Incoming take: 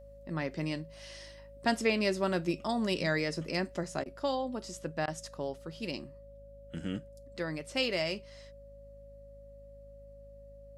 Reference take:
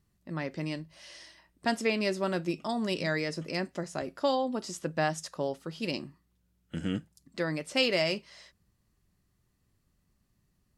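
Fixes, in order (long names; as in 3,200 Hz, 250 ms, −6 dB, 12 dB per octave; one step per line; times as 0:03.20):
hum removal 52.2 Hz, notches 5
notch filter 560 Hz, Q 30
repair the gap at 0:04.04/0:05.06, 16 ms
level correction +4.5 dB, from 0:04.05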